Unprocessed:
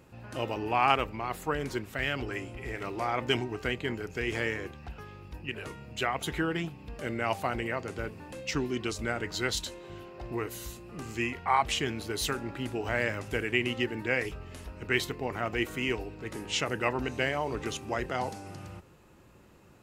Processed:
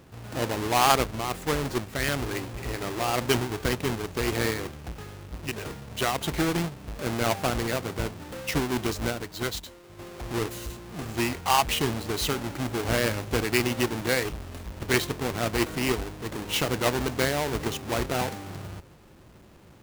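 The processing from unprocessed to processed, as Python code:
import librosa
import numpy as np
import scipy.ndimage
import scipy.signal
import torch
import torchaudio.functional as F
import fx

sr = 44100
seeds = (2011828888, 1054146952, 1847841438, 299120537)

y = fx.halfwave_hold(x, sr)
y = fx.upward_expand(y, sr, threshold_db=-35.0, expansion=1.5, at=(9.09, 9.98), fade=0.02)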